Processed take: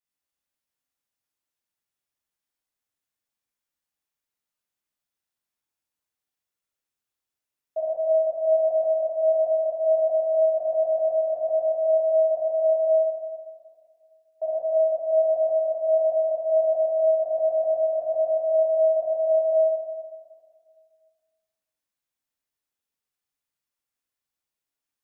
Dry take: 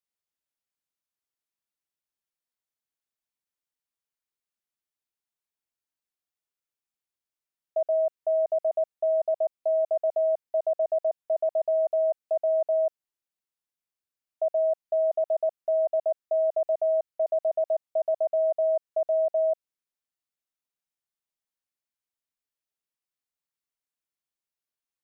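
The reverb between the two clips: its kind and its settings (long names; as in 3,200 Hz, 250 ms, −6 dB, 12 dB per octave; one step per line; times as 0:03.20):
dense smooth reverb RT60 1.9 s, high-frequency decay 0.75×, DRR −8 dB
level −4.5 dB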